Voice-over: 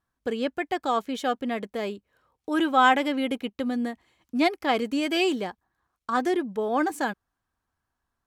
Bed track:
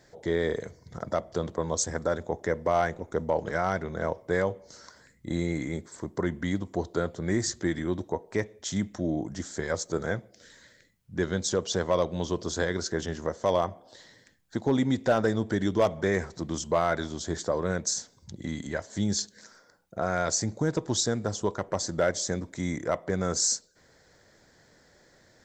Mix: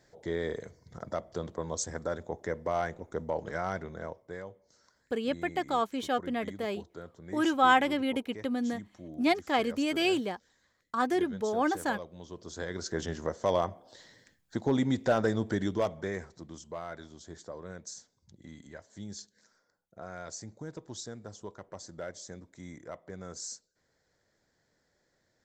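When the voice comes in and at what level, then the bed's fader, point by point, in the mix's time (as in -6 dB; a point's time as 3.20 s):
4.85 s, -3.5 dB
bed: 3.82 s -6 dB
4.43 s -16.5 dB
12.24 s -16.5 dB
13.01 s -2.5 dB
15.51 s -2.5 dB
16.63 s -15 dB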